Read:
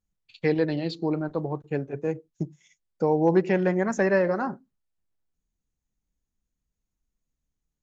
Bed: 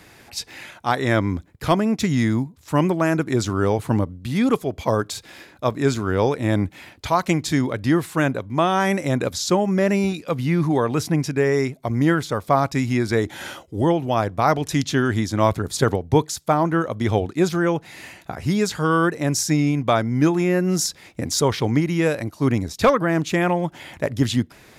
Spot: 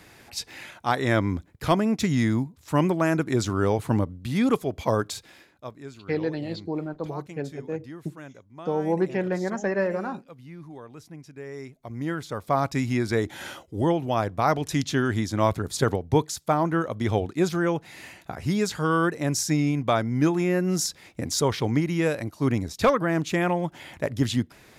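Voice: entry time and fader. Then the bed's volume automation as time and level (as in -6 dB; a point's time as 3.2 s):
5.65 s, -3.5 dB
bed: 5.1 s -3 dB
5.92 s -22.5 dB
11.22 s -22.5 dB
12.66 s -4 dB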